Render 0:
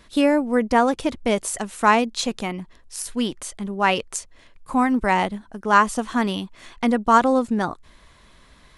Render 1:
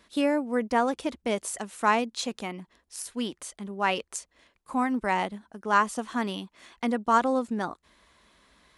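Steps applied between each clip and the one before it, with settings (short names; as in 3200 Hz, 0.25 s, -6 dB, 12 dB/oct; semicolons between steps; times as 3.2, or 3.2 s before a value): HPF 70 Hz 12 dB/oct; bell 110 Hz -14 dB 0.62 oct; gain -6.5 dB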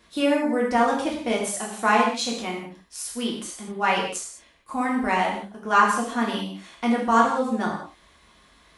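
non-linear reverb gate 0.23 s falling, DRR -3.5 dB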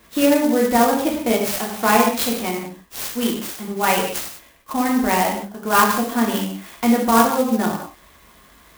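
dynamic EQ 1300 Hz, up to -5 dB, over -34 dBFS, Q 0.97; clock jitter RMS 0.052 ms; gain +6.5 dB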